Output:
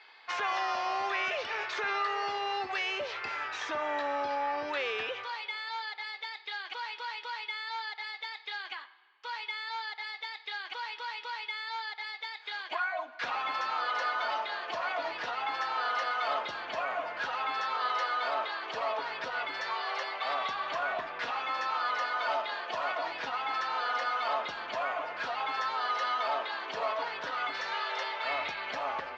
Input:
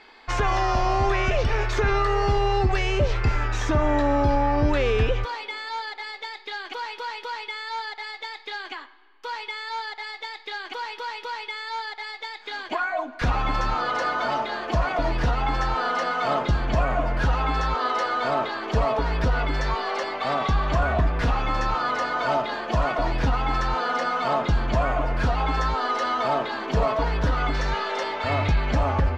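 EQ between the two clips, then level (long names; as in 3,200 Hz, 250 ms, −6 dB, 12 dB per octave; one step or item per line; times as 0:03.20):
band-pass filter 640–4,500 Hz
high-frequency loss of the air 72 metres
high-shelf EQ 2,400 Hz +10 dB
−7.0 dB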